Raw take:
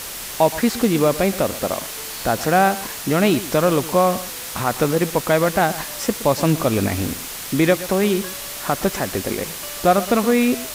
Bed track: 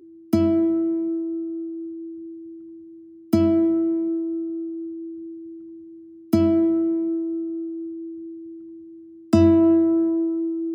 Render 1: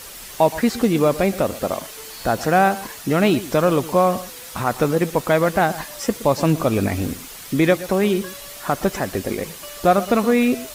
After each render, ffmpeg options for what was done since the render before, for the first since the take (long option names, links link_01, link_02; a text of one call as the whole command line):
ffmpeg -i in.wav -af "afftdn=noise_reduction=8:noise_floor=-32" out.wav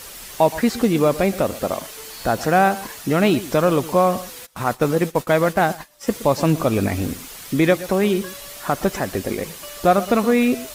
ffmpeg -i in.wav -filter_complex "[0:a]asplit=3[link_01][link_02][link_03];[link_01]afade=type=out:start_time=4.45:duration=0.02[link_04];[link_02]agate=range=-33dB:threshold=-24dB:ratio=3:release=100:detection=peak,afade=type=in:start_time=4.45:duration=0.02,afade=type=out:start_time=6.06:duration=0.02[link_05];[link_03]afade=type=in:start_time=6.06:duration=0.02[link_06];[link_04][link_05][link_06]amix=inputs=3:normalize=0" out.wav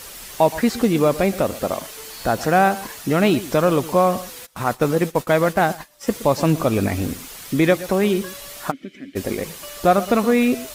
ffmpeg -i in.wav -filter_complex "[0:a]asplit=3[link_01][link_02][link_03];[link_01]afade=type=out:start_time=8.7:duration=0.02[link_04];[link_02]asplit=3[link_05][link_06][link_07];[link_05]bandpass=frequency=270:width_type=q:width=8,volume=0dB[link_08];[link_06]bandpass=frequency=2290:width_type=q:width=8,volume=-6dB[link_09];[link_07]bandpass=frequency=3010:width_type=q:width=8,volume=-9dB[link_10];[link_08][link_09][link_10]amix=inputs=3:normalize=0,afade=type=in:start_time=8.7:duration=0.02,afade=type=out:start_time=9.15:duration=0.02[link_11];[link_03]afade=type=in:start_time=9.15:duration=0.02[link_12];[link_04][link_11][link_12]amix=inputs=3:normalize=0" out.wav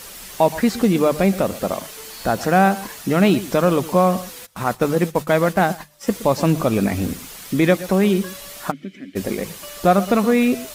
ffmpeg -i in.wav -af "equalizer=frequency=190:width=5.7:gain=6,bandreject=frequency=50:width_type=h:width=6,bandreject=frequency=100:width_type=h:width=6,bandreject=frequency=150:width_type=h:width=6" out.wav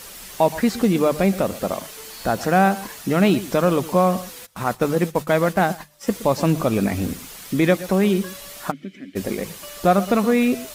ffmpeg -i in.wav -af "volume=-1.5dB" out.wav